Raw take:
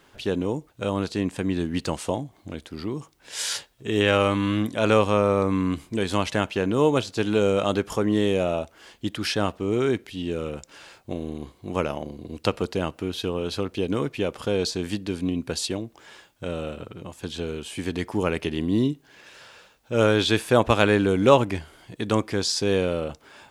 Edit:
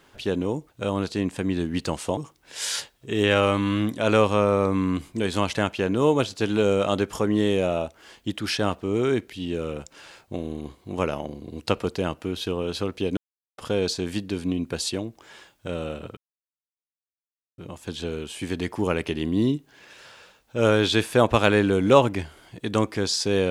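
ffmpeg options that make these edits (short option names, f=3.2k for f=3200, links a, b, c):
-filter_complex "[0:a]asplit=5[a][b][c][d][e];[a]atrim=end=2.172[f];[b]atrim=start=2.938:end=13.94,asetpts=PTS-STARTPTS,afade=t=out:st=10.998:d=0.004:c=hsin[g];[c]atrim=start=13.94:end=14.35,asetpts=PTS-STARTPTS,volume=0[h];[d]atrim=start=14.35:end=16.94,asetpts=PTS-STARTPTS,afade=t=in:d=0.004:c=hsin,afade=t=out:st=2.586:d=0.004:c=hsin,apad=pad_dur=1.41[i];[e]atrim=start=16.94,asetpts=PTS-STARTPTS,afade=t=in:d=0.004:c=hsin[j];[g][h][i][j]concat=n=4:v=0:a=1[k];[f][k]acrossfade=d=0.004:c1=hsin:c2=hsin"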